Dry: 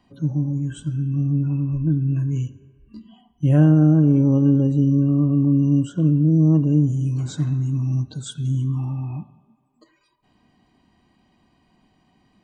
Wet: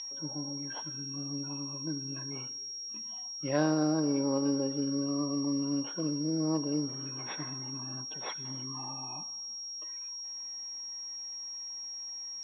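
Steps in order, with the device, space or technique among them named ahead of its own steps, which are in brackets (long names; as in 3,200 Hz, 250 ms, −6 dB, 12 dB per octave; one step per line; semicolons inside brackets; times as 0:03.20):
toy sound module (linearly interpolated sample-rate reduction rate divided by 6×; switching amplifier with a slow clock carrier 5,600 Hz; loudspeaker in its box 670–3,800 Hz, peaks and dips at 690 Hz −4 dB, 990 Hz +3 dB, 1,400 Hz −5 dB, 2,200 Hz +6 dB, 3,600 Hz +5 dB)
level +3 dB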